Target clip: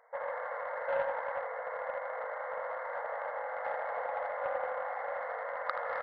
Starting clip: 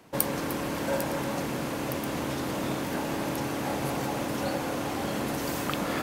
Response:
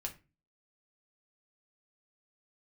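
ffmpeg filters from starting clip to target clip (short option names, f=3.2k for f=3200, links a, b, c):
-af "aecho=1:1:80|160|240|320|400|480|560:0.631|0.347|0.191|0.105|0.0577|0.0318|0.0175,afftfilt=real='re*between(b*sr/4096,460,2200)':imag='im*between(b*sr/4096,460,2200)':win_size=4096:overlap=0.75,aeval=exprs='0.158*(cos(1*acos(clip(val(0)/0.158,-1,1)))-cos(1*PI/2))+0.0224*(cos(3*acos(clip(val(0)/0.158,-1,1)))-cos(3*PI/2))':c=same"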